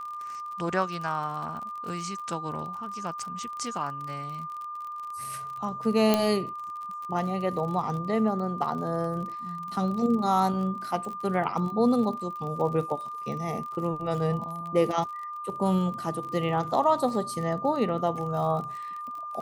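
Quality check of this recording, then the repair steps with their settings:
surface crackle 42 per second −35 dBFS
whistle 1,200 Hz −34 dBFS
0:06.14: click −8 dBFS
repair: click removal
notch filter 1,200 Hz, Q 30

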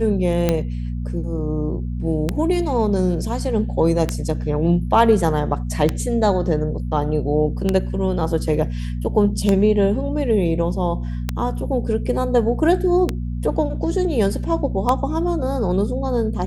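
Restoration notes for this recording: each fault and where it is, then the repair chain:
mains hum 60 Hz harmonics 4 −25 dBFS
scratch tick 33 1/3 rpm −5 dBFS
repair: click removal
hum removal 60 Hz, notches 4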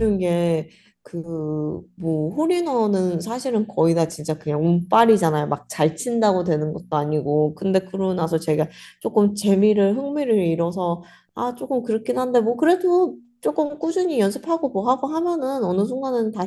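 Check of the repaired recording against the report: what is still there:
none of them is left

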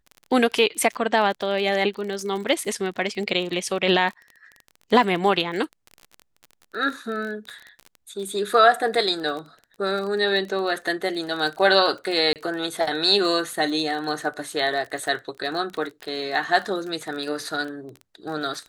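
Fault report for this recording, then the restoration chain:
surface crackle 30 per second −30 dBFS
0:12.33–0:12.36: drop-out 28 ms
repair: click removal
repair the gap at 0:12.33, 28 ms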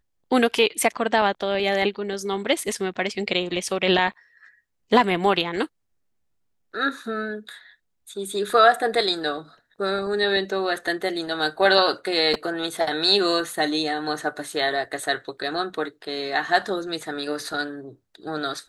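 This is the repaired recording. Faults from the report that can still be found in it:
none of them is left

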